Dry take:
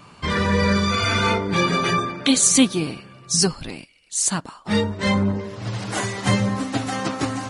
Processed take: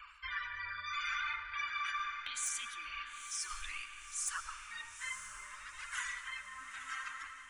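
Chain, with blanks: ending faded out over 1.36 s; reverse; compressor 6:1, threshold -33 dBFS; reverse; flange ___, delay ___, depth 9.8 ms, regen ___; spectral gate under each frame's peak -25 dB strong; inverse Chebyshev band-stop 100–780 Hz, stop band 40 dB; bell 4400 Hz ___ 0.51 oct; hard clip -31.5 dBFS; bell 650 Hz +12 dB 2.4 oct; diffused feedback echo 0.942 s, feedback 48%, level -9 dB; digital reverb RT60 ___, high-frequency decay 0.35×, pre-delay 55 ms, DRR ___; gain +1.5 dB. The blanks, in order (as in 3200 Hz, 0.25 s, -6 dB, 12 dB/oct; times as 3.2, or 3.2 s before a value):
0.68 Hz, 1.2 ms, -3%, -10.5 dB, 3.7 s, 9.5 dB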